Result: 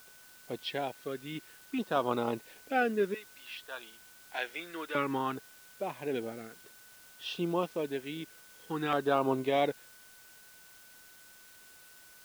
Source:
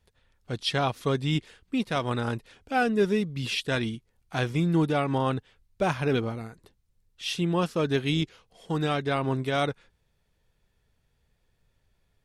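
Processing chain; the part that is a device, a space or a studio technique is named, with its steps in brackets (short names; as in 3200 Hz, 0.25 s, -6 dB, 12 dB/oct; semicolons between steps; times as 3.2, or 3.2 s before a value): 3.14–4.95 HPF 890 Hz 12 dB/oct; shortwave radio (BPF 300–2600 Hz; tremolo 0.43 Hz, depth 71%; LFO notch saw down 0.56 Hz 520–2400 Hz; whine 1500 Hz -62 dBFS; white noise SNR 21 dB); gain +2 dB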